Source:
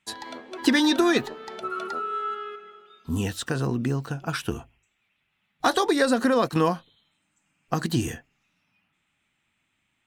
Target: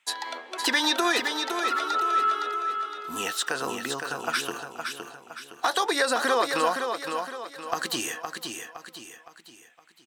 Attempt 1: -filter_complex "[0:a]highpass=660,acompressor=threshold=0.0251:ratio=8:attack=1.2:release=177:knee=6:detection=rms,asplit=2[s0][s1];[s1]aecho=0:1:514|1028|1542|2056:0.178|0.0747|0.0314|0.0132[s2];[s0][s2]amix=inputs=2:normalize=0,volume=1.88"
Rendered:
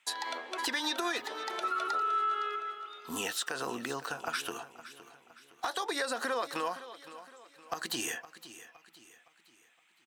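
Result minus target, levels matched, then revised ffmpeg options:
compression: peak gain reduction +10 dB; echo-to-direct -9 dB
-filter_complex "[0:a]highpass=660,acompressor=threshold=0.0944:ratio=8:attack=1.2:release=177:knee=6:detection=rms,asplit=2[s0][s1];[s1]aecho=0:1:514|1028|1542|2056|2570:0.501|0.21|0.0884|0.0371|0.0156[s2];[s0][s2]amix=inputs=2:normalize=0,volume=1.88"

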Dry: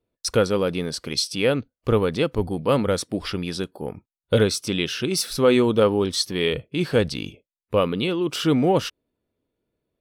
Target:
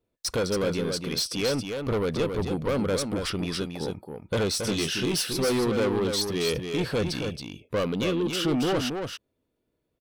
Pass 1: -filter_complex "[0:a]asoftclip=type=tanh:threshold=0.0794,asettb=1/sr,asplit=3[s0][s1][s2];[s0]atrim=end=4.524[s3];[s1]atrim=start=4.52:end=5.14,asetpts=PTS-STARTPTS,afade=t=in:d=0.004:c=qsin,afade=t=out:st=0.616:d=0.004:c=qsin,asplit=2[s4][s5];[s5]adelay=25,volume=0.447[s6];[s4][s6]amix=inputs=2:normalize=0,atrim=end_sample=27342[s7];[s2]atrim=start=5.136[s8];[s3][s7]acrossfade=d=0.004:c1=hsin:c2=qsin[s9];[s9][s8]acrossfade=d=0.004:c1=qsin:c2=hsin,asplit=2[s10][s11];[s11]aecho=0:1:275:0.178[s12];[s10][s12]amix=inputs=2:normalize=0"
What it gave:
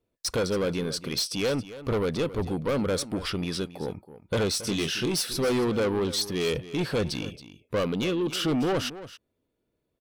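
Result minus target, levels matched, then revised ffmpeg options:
echo-to-direct -9 dB
-filter_complex "[0:a]asoftclip=type=tanh:threshold=0.0794,asettb=1/sr,asplit=3[s0][s1][s2];[s0]atrim=end=4.524[s3];[s1]atrim=start=4.52:end=5.14,asetpts=PTS-STARTPTS,afade=t=in:d=0.004:c=qsin,afade=t=out:st=0.616:d=0.004:c=qsin,asplit=2[s4][s5];[s5]adelay=25,volume=0.447[s6];[s4][s6]amix=inputs=2:normalize=0,atrim=end_sample=27342[s7];[s2]atrim=start=5.136[s8];[s3][s7]acrossfade=d=0.004:c1=hsin:c2=qsin[s9];[s9][s8]acrossfade=d=0.004:c1=qsin:c2=hsin,asplit=2[s10][s11];[s11]aecho=0:1:275:0.501[s12];[s10][s12]amix=inputs=2:normalize=0"

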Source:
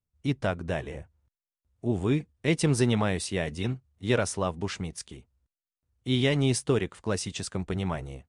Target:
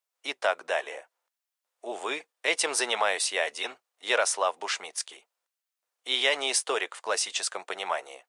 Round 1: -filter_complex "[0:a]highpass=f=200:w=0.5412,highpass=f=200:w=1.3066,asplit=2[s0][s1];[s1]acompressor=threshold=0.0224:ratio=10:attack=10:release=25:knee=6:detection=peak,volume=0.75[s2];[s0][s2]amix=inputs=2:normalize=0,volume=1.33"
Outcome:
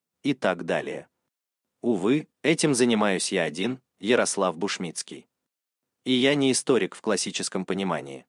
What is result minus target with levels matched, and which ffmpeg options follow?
250 Hz band +18.5 dB
-filter_complex "[0:a]highpass=f=590:w=0.5412,highpass=f=590:w=1.3066,asplit=2[s0][s1];[s1]acompressor=threshold=0.0224:ratio=10:attack=10:release=25:knee=6:detection=peak,volume=0.75[s2];[s0][s2]amix=inputs=2:normalize=0,volume=1.33"

